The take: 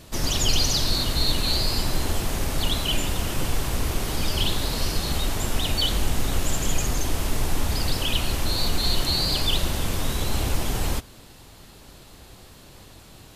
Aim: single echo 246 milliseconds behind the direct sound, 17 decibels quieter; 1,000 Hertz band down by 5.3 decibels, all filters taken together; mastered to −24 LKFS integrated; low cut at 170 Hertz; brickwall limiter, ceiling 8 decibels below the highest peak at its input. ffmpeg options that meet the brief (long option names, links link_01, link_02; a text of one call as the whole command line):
ffmpeg -i in.wav -af "highpass=170,equalizer=frequency=1000:width_type=o:gain=-7,alimiter=limit=-21dB:level=0:latency=1,aecho=1:1:246:0.141,volume=5dB" out.wav